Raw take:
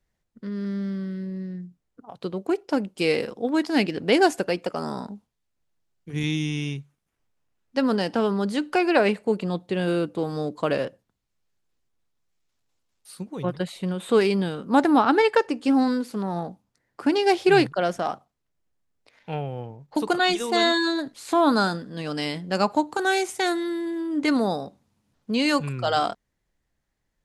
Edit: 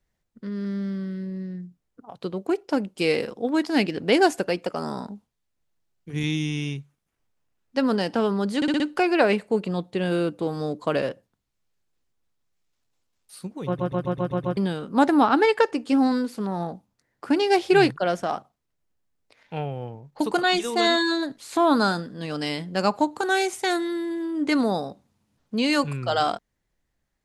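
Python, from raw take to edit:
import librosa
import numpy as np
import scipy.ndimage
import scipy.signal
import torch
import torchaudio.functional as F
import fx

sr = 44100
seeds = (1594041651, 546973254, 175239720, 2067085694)

y = fx.edit(x, sr, fx.stutter(start_s=8.56, slice_s=0.06, count=5),
    fx.stutter_over(start_s=13.42, slice_s=0.13, count=7), tone=tone)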